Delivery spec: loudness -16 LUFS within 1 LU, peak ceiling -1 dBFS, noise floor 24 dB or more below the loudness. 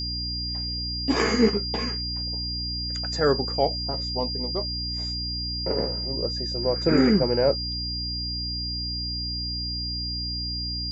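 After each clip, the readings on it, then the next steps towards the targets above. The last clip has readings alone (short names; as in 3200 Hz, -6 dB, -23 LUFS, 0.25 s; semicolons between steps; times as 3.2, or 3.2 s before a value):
hum 60 Hz; harmonics up to 300 Hz; hum level -31 dBFS; steady tone 4800 Hz; tone level -29 dBFS; loudness -25.5 LUFS; peak -7.5 dBFS; loudness target -16.0 LUFS
-> de-hum 60 Hz, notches 5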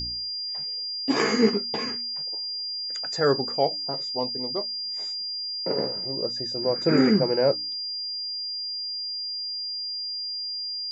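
hum none; steady tone 4800 Hz; tone level -29 dBFS
-> notch 4800 Hz, Q 30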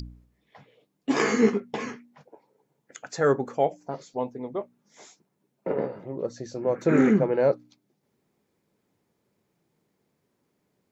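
steady tone none; loudness -26.0 LUFS; peak -7.5 dBFS; loudness target -16.0 LUFS
-> gain +10 dB; limiter -1 dBFS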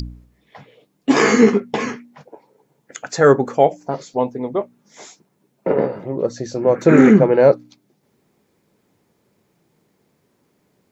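loudness -16.5 LUFS; peak -1.0 dBFS; noise floor -65 dBFS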